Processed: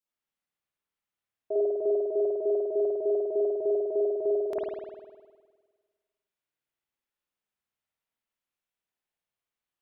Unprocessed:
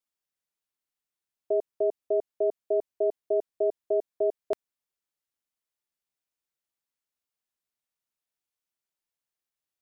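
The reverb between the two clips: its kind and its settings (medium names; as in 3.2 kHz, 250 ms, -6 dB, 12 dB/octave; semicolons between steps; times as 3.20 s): spring tank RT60 1.5 s, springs 51 ms, chirp 70 ms, DRR -7.5 dB; trim -5.5 dB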